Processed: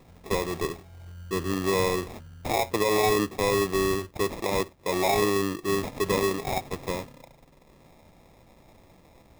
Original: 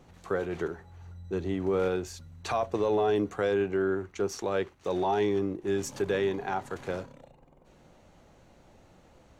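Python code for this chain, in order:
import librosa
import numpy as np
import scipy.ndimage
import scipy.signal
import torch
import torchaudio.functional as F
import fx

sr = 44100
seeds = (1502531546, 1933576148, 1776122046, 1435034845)

y = fx.dynamic_eq(x, sr, hz=3100.0, q=1.1, threshold_db=-52.0, ratio=4.0, max_db=7)
y = fx.sample_hold(y, sr, seeds[0], rate_hz=1500.0, jitter_pct=0)
y = y * librosa.db_to_amplitude(2.5)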